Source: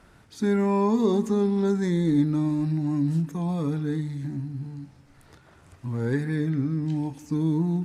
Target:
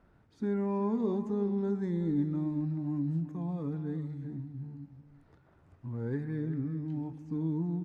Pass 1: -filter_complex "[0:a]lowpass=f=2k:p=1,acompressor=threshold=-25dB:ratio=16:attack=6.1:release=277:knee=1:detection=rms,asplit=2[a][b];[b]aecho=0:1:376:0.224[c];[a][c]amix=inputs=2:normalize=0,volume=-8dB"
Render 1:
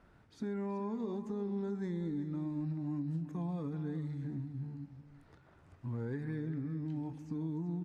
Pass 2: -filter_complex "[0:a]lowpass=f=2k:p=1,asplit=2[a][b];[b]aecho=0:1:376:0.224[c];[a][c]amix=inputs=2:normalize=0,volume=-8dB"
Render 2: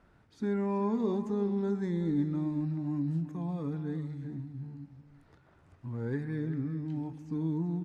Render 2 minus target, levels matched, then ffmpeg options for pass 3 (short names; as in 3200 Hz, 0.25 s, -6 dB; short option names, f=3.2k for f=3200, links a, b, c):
2000 Hz band +3.5 dB
-filter_complex "[0:a]lowpass=f=950:p=1,asplit=2[a][b];[b]aecho=0:1:376:0.224[c];[a][c]amix=inputs=2:normalize=0,volume=-8dB"